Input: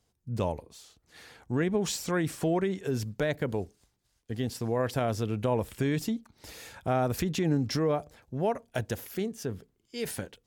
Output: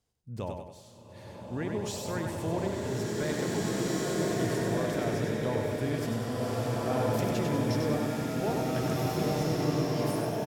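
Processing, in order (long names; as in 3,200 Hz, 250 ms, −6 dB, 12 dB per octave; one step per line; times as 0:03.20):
on a send: repeating echo 97 ms, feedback 45%, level −5 dB
on the sum: slow-attack reverb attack 2,160 ms, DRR −5.5 dB
level −7 dB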